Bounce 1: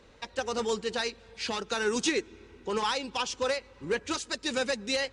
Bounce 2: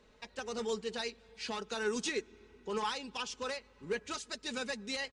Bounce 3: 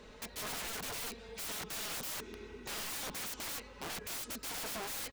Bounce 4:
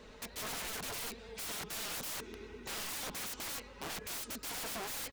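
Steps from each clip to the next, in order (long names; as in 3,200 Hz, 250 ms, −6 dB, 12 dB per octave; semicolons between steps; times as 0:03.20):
comb filter 4.7 ms, depth 45%; level −8 dB
wavefolder on the positive side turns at −36.5 dBFS; brickwall limiter −34.5 dBFS, peak gain reduction 11.5 dB; wrap-around overflow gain 46 dB; level +10 dB
pitch vibrato 9.5 Hz 47 cents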